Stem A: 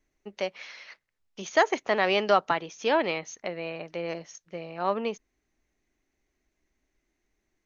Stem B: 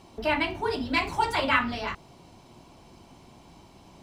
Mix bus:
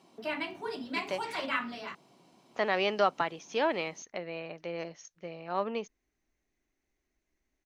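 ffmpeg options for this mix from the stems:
-filter_complex "[0:a]adelay=700,volume=-4.5dB,asplit=3[a][b][c];[a]atrim=end=1.46,asetpts=PTS-STARTPTS,afade=t=out:st=1.456:d=0.004:c=hsin[d];[b]atrim=start=1.46:end=2.51,asetpts=PTS-STARTPTS,volume=0[e];[c]atrim=start=2.51,asetpts=PTS-STARTPTS,afade=t=in:d=0.004:c=hsin[f];[d][e][f]concat=n=3:v=0:a=1[g];[1:a]highpass=f=160:w=0.5412,highpass=f=160:w=1.3066,bandreject=f=880:w=17,volume=-8.5dB[h];[g][h]amix=inputs=2:normalize=0"

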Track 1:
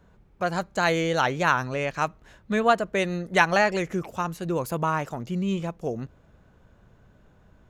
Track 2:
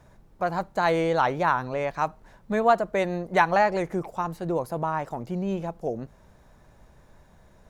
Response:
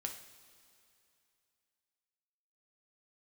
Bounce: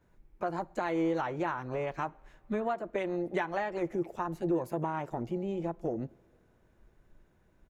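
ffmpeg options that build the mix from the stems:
-filter_complex "[0:a]equalizer=f=2.1k:t=o:w=0.66:g=7,acompressor=threshold=-30dB:ratio=3,volume=-14dB,asplit=2[a][b];[b]volume=-17dB[c];[1:a]afwtdn=0.0251,acompressor=threshold=-29dB:ratio=6,highshelf=f=11k:g=8.5,volume=-1,adelay=11,volume=-3.5dB,asplit=2[d][e];[e]volume=-12.5dB[f];[2:a]atrim=start_sample=2205[g];[c][f]amix=inputs=2:normalize=0[h];[h][g]afir=irnorm=-1:irlink=0[i];[a][d][i]amix=inputs=3:normalize=0,equalizer=f=340:t=o:w=0.39:g=8.5"

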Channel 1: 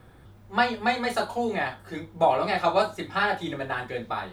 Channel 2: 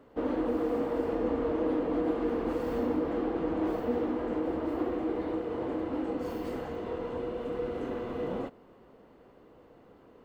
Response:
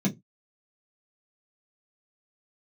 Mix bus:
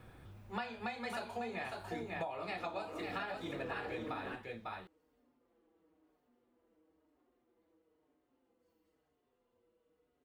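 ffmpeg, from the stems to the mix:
-filter_complex "[0:a]equalizer=f=2.5k:w=6.2:g=7.5,flanger=delay=8.7:depth=2:regen=88:speed=2:shape=sinusoidal,volume=-0.5dB,asplit=3[a][b][c];[b]volume=-8.5dB[d];[1:a]asoftclip=type=tanh:threshold=-23dB,highshelf=f=2.6k:g=12,asplit=2[e][f];[f]adelay=5.3,afreqshift=-1[g];[e][g]amix=inputs=2:normalize=1,adelay=2400,volume=-7dB[h];[c]apad=whole_len=558054[i];[h][i]sidechaingate=range=-33dB:threshold=-47dB:ratio=16:detection=peak[j];[d]aecho=0:1:549:1[k];[a][j][k]amix=inputs=3:normalize=0,acompressor=threshold=-37dB:ratio=16"

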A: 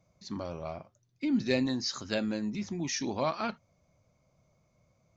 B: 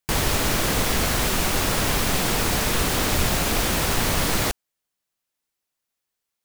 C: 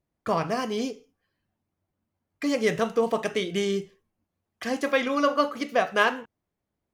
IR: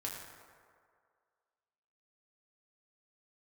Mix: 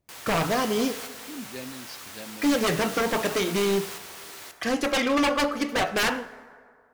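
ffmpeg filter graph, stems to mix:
-filter_complex "[0:a]adelay=50,volume=-11dB[a];[1:a]highpass=f=1.1k:p=1,volume=-14dB,asplit=2[b][c];[c]volume=-8dB[d];[2:a]aeval=exprs='0.0794*(abs(mod(val(0)/0.0794+3,4)-2)-1)':c=same,volume=2.5dB,asplit=3[e][f][g];[f]volume=-9.5dB[h];[g]apad=whole_len=284257[i];[b][i]sidechaingate=range=-7dB:threshold=-47dB:ratio=16:detection=peak[j];[3:a]atrim=start_sample=2205[k];[d][h]amix=inputs=2:normalize=0[l];[l][k]afir=irnorm=-1:irlink=0[m];[a][j][e][m]amix=inputs=4:normalize=0"

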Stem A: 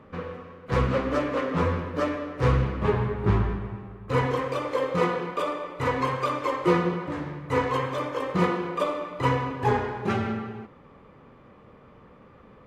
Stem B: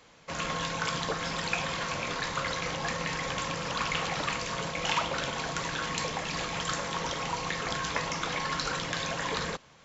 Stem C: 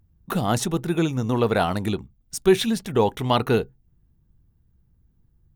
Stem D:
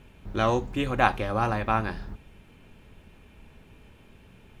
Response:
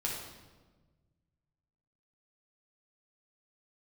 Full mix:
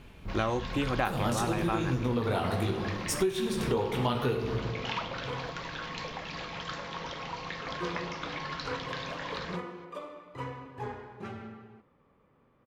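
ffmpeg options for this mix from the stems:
-filter_complex "[0:a]adelay=1150,volume=-15dB,asplit=3[a][b][c];[a]atrim=end=5.5,asetpts=PTS-STARTPTS,afade=t=out:st=5.496:d=0.004:c=hsin[d];[b]atrim=start=5.5:end=7.67,asetpts=PTS-STARTPTS,volume=0[e];[c]atrim=start=7.67,asetpts=PTS-STARTPTS,afade=t=in:d=0.004:c=hsin[f];[d][e][f]concat=n=3:v=0:a=1[g];[1:a]lowpass=f=4.9k:w=0.5412,lowpass=f=4.9k:w=1.3066,volume=-5.5dB[h];[2:a]flanger=delay=15.5:depth=6.4:speed=0.84,adelay=750,volume=-1.5dB,asplit=2[i][j];[j]volume=-3.5dB[k];[3:a]volume=1dB[l];[4:a]atrim=start_sample=2205[m];[k][m]afir=irnorm=-1:irlink=0[n];[g][h][i][l][n]amix=inputs=5:normalize=0,acompressor=threshold=-25dB:ratio=10"

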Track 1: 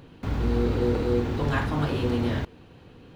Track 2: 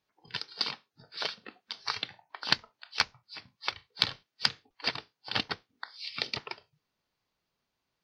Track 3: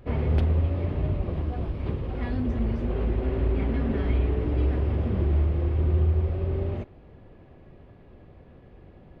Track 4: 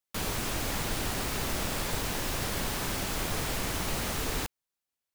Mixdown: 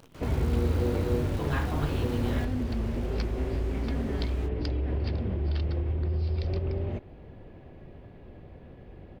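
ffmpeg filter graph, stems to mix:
-filter_complex "[0:a]acrusher=bits=8:dc=4:mix=0:aa=0.000001,volume=-5.5dB,asplit=2[a][b];[1:a]adelay=200,volume=-16dB[c];[2:a]equalizer=f=1.2k:w=3.8:g=-4.5,alimiter=level_in=0.5dB:limit=-24dB:level=0:latency=1:release=220,volume=-0.5dB,adelay=150,volume=2.5dB[d];[3:a]flanger=delay=20:depth=5:speed=1.6,lowpass=f=1.9k:p=1,volume=-9dB[e];[b]apad=whole_len=363016[f];[c][f]sidechaincompress=threshold=-47dB:ratio=8:attack=16:release=505[g];[a][g][d][e]amix=inputs=4:normalize=0"

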